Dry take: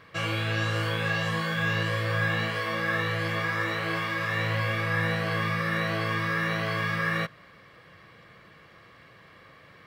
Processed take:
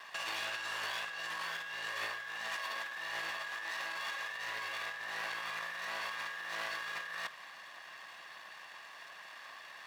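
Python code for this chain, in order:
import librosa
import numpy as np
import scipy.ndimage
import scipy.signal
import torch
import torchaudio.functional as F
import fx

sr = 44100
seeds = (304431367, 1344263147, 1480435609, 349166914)

y = fx.lower_of_two(x, sr, delay_ms=1.1)
y = scipy.signal.sosfilt(scipy.signal.butter(2, 680.0, 'highpass', fs=sr, output='sos'), y)
y = fx.over_compress(y, sr, threshold_db=-39.0, ratio=-1.0)
y = y * librosa.db_to_amplitude(-1.5)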